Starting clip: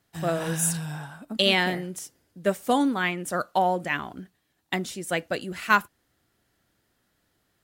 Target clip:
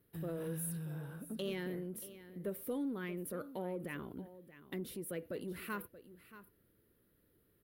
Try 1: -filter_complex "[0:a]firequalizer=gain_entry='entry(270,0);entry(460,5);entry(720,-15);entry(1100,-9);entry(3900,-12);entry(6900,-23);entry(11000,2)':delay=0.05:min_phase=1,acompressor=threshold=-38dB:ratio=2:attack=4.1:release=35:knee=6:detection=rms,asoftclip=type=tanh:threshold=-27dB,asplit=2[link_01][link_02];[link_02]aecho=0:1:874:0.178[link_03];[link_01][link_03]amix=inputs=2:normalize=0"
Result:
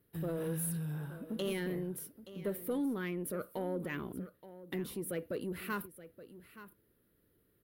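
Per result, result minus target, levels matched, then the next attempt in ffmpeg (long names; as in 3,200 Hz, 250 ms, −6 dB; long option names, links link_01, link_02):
echo 244 ms late; downward compressor: peak gain reduction −4.5 dB
-filter_complex "[0:a]firequalizer=gain_entry='entry(270,0);entry(460,5);entry(720,-15);entry(1100,-9);entry(3900,-12);entry(6900,-23);entry(11000,2)':delay=0.05:min_phase=1,acompressor=threshold=-38dB:ratio=2:attack=4.1:release=35:knee=6:detection=rms,asoftclip=type=tanh:threshold=-27dB,asplit=2[link_01][link_02];[link_02]aecho=0:1:630:0.178[link_03];[link_01][link_03]amix=inputs=2:normalize=0"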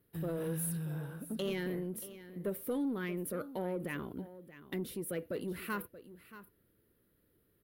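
downward compressor: peak gain reduction −4.5 dB
-filter_complex "[0:a]firequalizer=gain_entry='entry(270,0);entry(460,5);entry(720,-15);entry(1100,-9);entry(3900,-12);entry(6900,-23);entry(11000,2)':delay=0.05:min_phase=1,acompressor=threshold=-47dB:ratio=2:attack=4.1:release=35:knee=6:detection=rms,asoftclip=type=tanh:threshold=-27dB,asplit=2[link_01][link_02];[link_02]aecho=0:1:630:0.178[link_03];[link_01][link_03]amix=inputs=2:normalize=0"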